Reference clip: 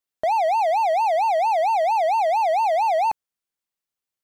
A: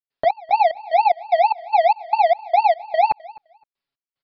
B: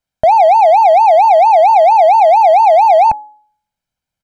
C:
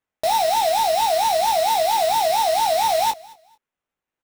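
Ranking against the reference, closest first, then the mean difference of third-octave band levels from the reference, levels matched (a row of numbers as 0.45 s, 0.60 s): B, A, C; 3.0 dB, 6.0 dB, 14.5 dB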